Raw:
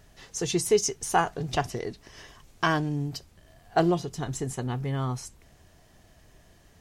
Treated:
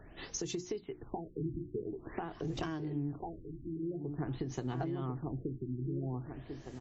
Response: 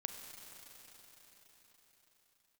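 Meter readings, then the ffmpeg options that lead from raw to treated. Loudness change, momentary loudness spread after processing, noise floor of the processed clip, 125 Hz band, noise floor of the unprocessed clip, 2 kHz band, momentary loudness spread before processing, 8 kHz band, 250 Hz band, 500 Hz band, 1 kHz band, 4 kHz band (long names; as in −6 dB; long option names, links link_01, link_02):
−11.5 dB, 6 LU, −54 dBFS, −6.5 dB, −58 dBFS, −17.5 dB, 14 LU, −14.0 dB, −6.0 dB, −11.5 dB, −16.0 dB, −14.0 dB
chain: -filter_complex "[0:a]equalizer=frequency=320:width_type=o:width=0.42:gain=11.5,asplit=2[link_01][link_02];[link_02]adelay=1042,lowpass=frequency=2000:poles=1,volume=-5.5dB,asplit=2[link_03][link_04];[link_04]adelay=1042,lowpass=frequency=2000:poles=1,volume=0.23,asplit=2[link_05][link_06];[link_06]adelay=1042,lowpass=frequency=2000:poles=1,volume=0.23[link_07];[link_01][link_03][link_05][link_07]amix=inputs=4:normalize=0,acompressor=threshold=-33dB:ratio=6,bandreject=frequency=60:width_type=h:width=6,bandreject=frequency=120:width_type=h:width=6,bandreject=frequency=180:width_type=h:width=6,bandreject=frequency=240:width_type=h:width=6,bandreject=frequency=300:width_type=h:width=6,bandreject=frequency=360:width_type=h:width=6,acrossover=split=200[link_08][link_09];[link_09]acompressor=threshold=-38dB:ratio=6[link_10];[link_08][link_10]amix=inputs=2:normalize=0,highshelf=frequency=9800:gain=4.5,afftfilt=real='re*lt(b*sr/1024,380*pow(8000/380,0.5+0.5*sin(2*PI*0.48*pts/sr)))':imag='im*lt(b*sr/1024,380*pow(8000/380,0.5+0.5*sin(2*PI*0.48*pts/sr)))':win_size=1024:overlap=0.75,volume=2dB"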